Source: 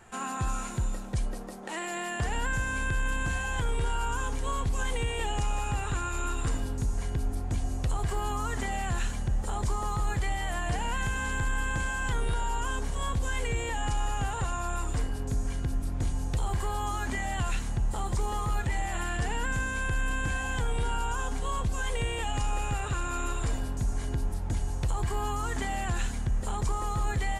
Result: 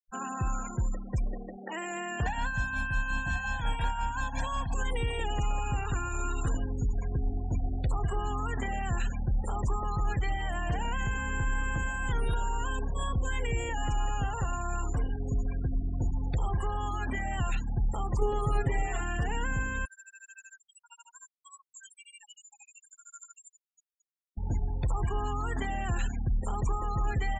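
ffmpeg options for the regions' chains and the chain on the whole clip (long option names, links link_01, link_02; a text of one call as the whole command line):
ffmpeg -i in.wav -filter_complex "[0:a]asettb=1/sr,asplit=3[link_01][link_02][link_03];[link_01]atrim=end=2.264[link_04];[link_02]atrim=start=2.26:end=4.74,asetpts=PTS-STARTPTS,afade=type=in:duration=0.004:curve=qsin,afade=type=out:start_time=2.476:duration=0.004:curve=qsin,tremolo=f=5.6:d=0.67,asplit=2[link_05][link_06];[link_06]highpass=frequency=720:poles=1,volume=18dB,asoftclip=type=tanh:threshold=-20.5dB[link_07];[link_05][link_07]amix=inputs=2:normalize=0,lowpass=frequency=3700:poles=1,volume=-6dB,aecho=1:1:1.2:1,atrim=end_sample=109368[link_08];[link_03]atrim=start=4.736[link_09];[link_04][link_08]acrossfade=duration=0.004:curve1=hsin:curve2=qsin[link_10];[link_10][link_09]acrossfade=duration=0.004:curve1=qsin:curve2=hsin,asettb=1/sr,asplit=3[link_11][link_12][link_13];[link_11]atrim=end=18.214[link_14];[link_12]atrim=start=18.21:end=19.01,asetpts=PTS-STARTPTS,afade=type=in:duration=0.004:curve=qsin,afade=type=out:start_time=0.796:duration=0.004:curve=qsin,equalizer=frequency=430:width=3.1:gain=9,aecho=1:1:7.3:0.84,atrim=end_sample=35280[link_15];[link_13]atrim=start=19.006[link_16];[link_14][link_15]acrossfade=duration=0.004:curve1=hsin:curve2=qsin[link_17];[link_17][link_16]acrossfade=duration=0.004:curve1=qsin:curve2=hsin,asettb=1/sr,asplit=3[link_18][link_19][link_20];[link_18]atrim=end=19.854[link_21];[link_19]atrim=start=19.85:end=24.37,asetpts=PTS-STARTPTS,afade=type=in:duration=0.004:curve=qsin,afade=type=out:start_time=4.516:duration=0.004:curve=qsin,aderivative,tremolo=f=13:d=0.63[link_22];[link_20]atrim=start=24.366[link_23];[link_21][link_22]acrossfade=duration=0.004:curve1=hsin:curve2=qsin[link_24];[link_24][link_23]acrossfade=duration=0.004:curve1=qsin:curve2=hsin,afftfilt=real='re*gte(hypot(re,im),0.0178)':imag='im*gte(hypot(re,im),0.0178)':win_size=1024:overlap=0.75,acrossover=split=370[link_25][link_26];[link_26]acompressor=threshold=-33dB:ratio=6[link_27];[link_25][link_27]amix=inputs=2:normalize=0" out.wav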